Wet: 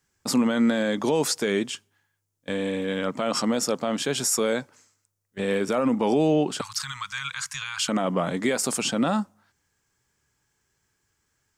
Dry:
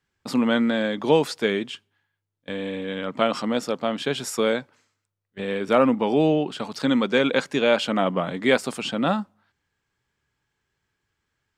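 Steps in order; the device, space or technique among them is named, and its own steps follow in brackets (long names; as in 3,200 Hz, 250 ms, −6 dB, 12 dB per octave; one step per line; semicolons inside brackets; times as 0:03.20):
over-bright horn tweeter (high shelf with overshoot 4,800 Hz +8 dB, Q 1.5; brickwall limiter −16 dBFS, peak gain reduction 11 dB)
0:06.61–0:07.89: elliptic band-stop filter 120–1,100 Hz, stop band 40 dB
level +2.5 dB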